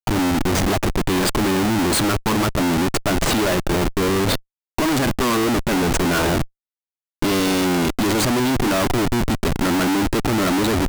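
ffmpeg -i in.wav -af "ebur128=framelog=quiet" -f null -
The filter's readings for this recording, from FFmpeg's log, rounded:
Integrated loudness:
  I:         -19.6 LUFS
  Threshold: -29.6 LUFS
Loudness range:
  LRA:         1.2 LU
  Threshold: -39.9 LUFS
  LRA low:   -20.5 LUFS
  LRA high:  -19.3 LUFS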